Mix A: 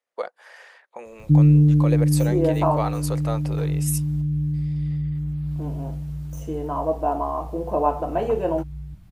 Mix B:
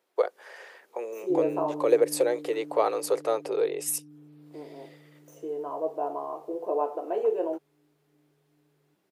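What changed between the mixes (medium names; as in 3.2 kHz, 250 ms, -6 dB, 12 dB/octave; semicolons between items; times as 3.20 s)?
first voice +9.5 dB; second voice: entry -1.05 s; master: add ladder high-pass 350 Hz, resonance 60%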